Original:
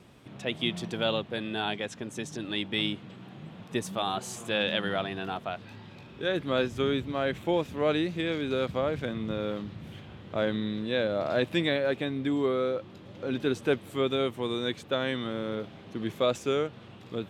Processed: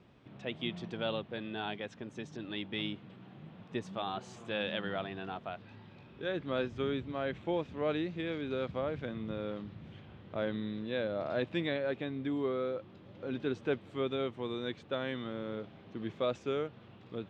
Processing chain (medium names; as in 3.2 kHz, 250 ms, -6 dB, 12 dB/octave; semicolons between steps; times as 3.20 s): distance through air 150 m; trim -6 dB